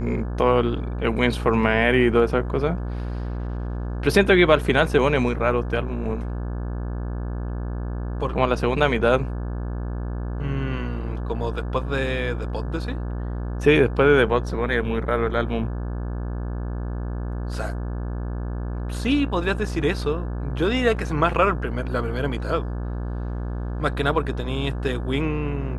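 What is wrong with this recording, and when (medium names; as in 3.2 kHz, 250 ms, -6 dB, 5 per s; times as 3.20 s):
buzz 60 Hz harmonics 29 -28 dBFS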